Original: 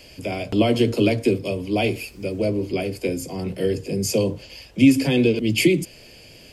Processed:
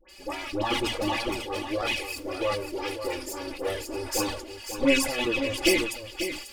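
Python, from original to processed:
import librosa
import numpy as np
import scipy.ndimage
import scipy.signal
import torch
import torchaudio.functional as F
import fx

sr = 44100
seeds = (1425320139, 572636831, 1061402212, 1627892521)

p1 = fx.lower_of_two(x, sr, delay_ms=2.4)
p2 = fx.low_shelf(p1, sr, hz=370.0, db=-11.0)
p3 = fx.dispersion(p2, sr, late='highs', ms=90.0, hz=1400.0)
p4 = fx.env_flanger(p3, sr, rest_ms=5.6, full_db=-16.0)
p5 = p4 + 0.71 * np.pad(p4, (int(3.5 * sr / 1000.0), 0))[:len(p4)]
p6 = p5 + fx.echo_single(p5, sr, ms=541, db=-9.0, dry=0)
y = fx.sustainer(p6, sr, db_per_s=69.0)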